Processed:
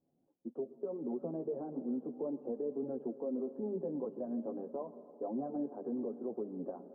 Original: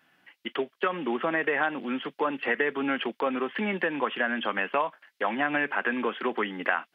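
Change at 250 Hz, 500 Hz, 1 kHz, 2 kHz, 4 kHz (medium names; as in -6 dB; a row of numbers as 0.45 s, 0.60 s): -6.0 dB, -8.0 dB, -21.0 dB, under -40 dB, under -40 dB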